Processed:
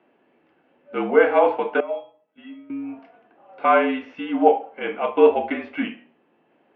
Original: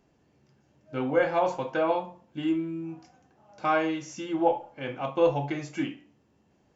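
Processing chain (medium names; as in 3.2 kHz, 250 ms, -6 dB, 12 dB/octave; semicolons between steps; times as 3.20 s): 1.80–2.70 s: feedback comb 670 Hz, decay 0.25 s, harmonics all, mix 90%; mistuned SSB -51 Hz 330–3100 Hz; trim +8.5 dB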